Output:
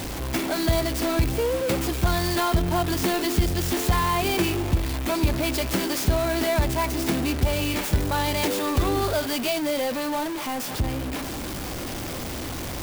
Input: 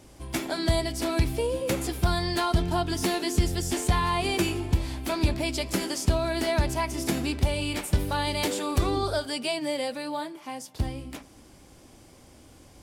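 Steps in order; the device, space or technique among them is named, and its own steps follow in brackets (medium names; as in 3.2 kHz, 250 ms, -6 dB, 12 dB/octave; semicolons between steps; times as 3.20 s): early CD player with a faulty converter (jump at every zero crossing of -26 dBFS; sampling jitter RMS 0.03 ms)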